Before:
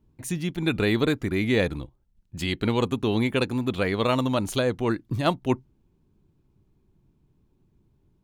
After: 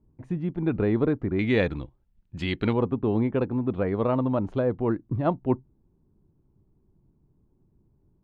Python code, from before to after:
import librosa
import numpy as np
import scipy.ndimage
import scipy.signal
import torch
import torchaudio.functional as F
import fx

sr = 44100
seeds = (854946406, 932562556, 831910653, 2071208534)

y = fx.lowpass(x, sr, hz=fx.steps((0.0, 1000.0), (1.39, 3000.0), (2.73, 1000.0)), slope=12)